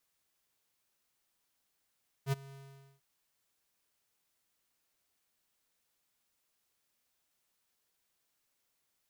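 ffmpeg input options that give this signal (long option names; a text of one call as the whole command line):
ffmpeg -f lavfi -i "aevalsrc='0.0376*(2*lt(mod(137*t,1),0.5)-1)':duration=0.746:sample_rate=44100,afade=type=in:duration=0.064,afade=type=out:start_time=0.064:duration=0.02:silence=0.0794,afade=type=out:start_time=0.27:duration=0.476" out.wav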